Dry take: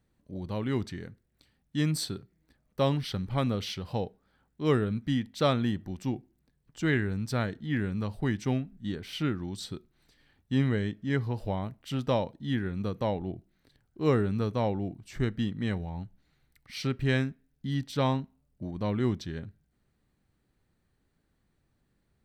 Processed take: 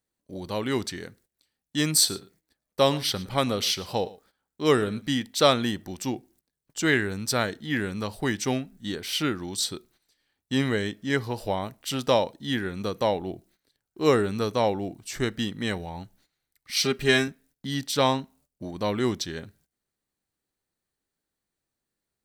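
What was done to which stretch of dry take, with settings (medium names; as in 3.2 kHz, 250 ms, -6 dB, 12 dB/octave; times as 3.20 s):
1.95–5.22 s: delay 113 ms -20 dB
16.76–17.28 s: comb 4.9 ms, depth 75%
whole clip: gate -60 dBFS, range -16 dB; tone controls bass -11 dB, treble +10 dB; trim +7 dB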